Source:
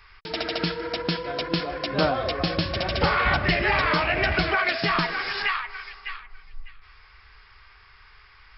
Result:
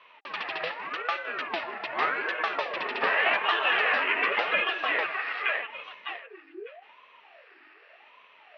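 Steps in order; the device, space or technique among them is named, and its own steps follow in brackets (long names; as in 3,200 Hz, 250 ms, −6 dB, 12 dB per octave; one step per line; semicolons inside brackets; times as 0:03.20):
0:04.59–0:05.84: high-frequency loss of the air 150 metres
voice changer toy (ring modulator whose carrier an LFO sweeps 670 Hz, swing 55%, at 0.85 Hz; loudspeaker in its box 420–3,600 Hz, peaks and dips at 430 Hz +5 dB, 630 Hz +5 dB, 1,200 Hz +6 dB, 1,800 Hz +9 dB, 2,600 Hz +9 dB)
level −5 dB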